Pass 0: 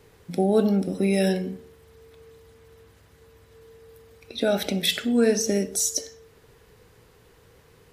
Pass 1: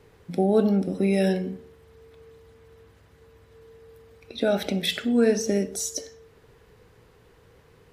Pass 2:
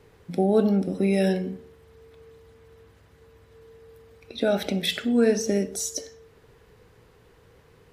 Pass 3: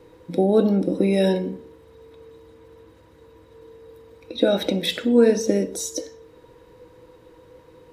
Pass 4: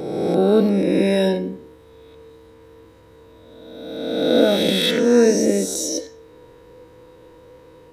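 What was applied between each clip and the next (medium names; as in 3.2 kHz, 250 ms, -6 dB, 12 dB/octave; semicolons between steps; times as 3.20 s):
treble shelf 4.4 kHz -8 dB
no audible change
small resonant body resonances 320/500/950/3800 Hz, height 16 dB, ringing for 80 ms
reverse spectral sustain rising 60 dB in 1.64 s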